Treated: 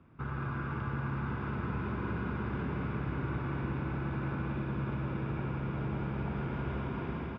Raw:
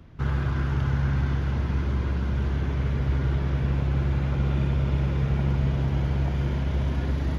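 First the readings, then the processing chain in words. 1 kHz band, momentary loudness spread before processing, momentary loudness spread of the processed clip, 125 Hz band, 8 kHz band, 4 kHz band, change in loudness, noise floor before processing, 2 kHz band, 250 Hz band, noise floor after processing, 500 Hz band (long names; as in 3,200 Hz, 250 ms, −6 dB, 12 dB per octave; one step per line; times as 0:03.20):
−2.0 dB, 2 LU, 1 LU, −11.0 dB, can't be measured, −12.0 dB, −10.0 dB, −28 dBFS, −3.5 dB, −5.5 dB, −38 dBFS, −5.0 dB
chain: fade-out on the ending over 0.66 s
high-pass filter 420 Hz 6 dB per octave
high-shelf EQ 2,900 Hz −7 dB
notch filter 4,000 Hz, Q 9.2
comb filter 0.8 ms, depth 40%
automatic gain control
floating-point word with a short mantissa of 4 bits
high-frequency loss of the air 350 metres
single-tap delay 111 ms −8.5 dB
downward compressor 6 to 1, threshold −30 dBFS, peak gain reduction 13.5 dB
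on a send: echo machine with several playback heads 185 ms, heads all three, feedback 73%, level −11 dB
on the sum: level −3 dB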